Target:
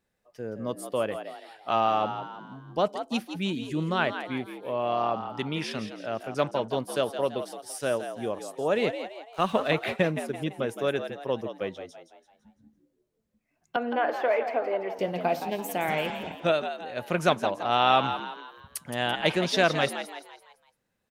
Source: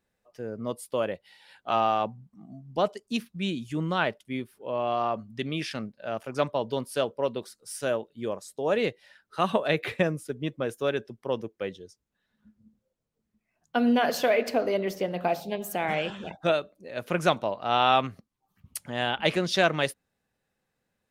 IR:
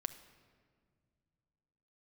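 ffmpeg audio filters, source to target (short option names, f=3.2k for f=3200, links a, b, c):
-filter_complex "[0:a]asettb=1/sr,asplit=3[a][b][c];[a]atrim=end=8.894[d];[b]atrim=start=8.89:end=9.71,asetpts=PTS-STARTPTS,afade=t=in:d=0.004:c=qsin,afade=t=out:st=0.816:d=0.004:c=qsin,aeval=exprs='sgn(val(0))*max(abs(val(0))-0.00473,0)':c=same[e];[c]atrim=start=9.706[f];[d][e]acrossfade=d=0.004:c1=hsin:c2=qsin[g];[g][f]acrossfade=d=0.004:c1=qsin:c2=hsin,asettb=1/sr,asplit=3[h][i][j];[h]atrim=end=13.764[k];[i]atrim=start=13.76:end=14.99,asetpts=PTS-STARTPTS,afade=t=in:d=0.004:c=qsin,afade=t=out:st=1.226:d=0.004:c=qsin,acrossover=split=380 2300:gain=0.141 1 0.0794[l][m][n];[l][m][n]amix=inputs=3:normalize=0[o];[j]atrim=start=14.986[p];[k][o]acrossfade=d=0.004:c1=hsin:c2=qsin[q];[q][p]acrossfade=d=0.004:c1=qsin:c2=hsin,asplit=6[r][s][t][u][v][w];[s]adelay=168,afreqshift=74,volume=-9.5dB[x];[t]adelay=336,afreqshift=148,volume=-16.8dB[y];[u]adelay=504,afreqshift=222,volume=-24.2dB[z];[v]adelay=672,afreqshift=296,volume=-31.5dB[aa];[w]adelay=840,afreqshift=370,volume=-38.8dB[ab];[r][x][y][z][aa][ab]amix=inputs=6:normalize=0"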